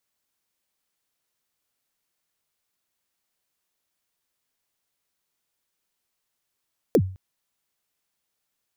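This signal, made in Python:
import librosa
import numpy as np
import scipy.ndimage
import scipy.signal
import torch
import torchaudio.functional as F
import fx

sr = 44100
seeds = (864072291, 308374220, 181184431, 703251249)

y = fx.drum_kick(sr, seeds[0], length_s=0.21, level_db=-11, start_hz=550.0, end_hz=94.0, sweep_ms=62.0, decay_s=0.42, click=True)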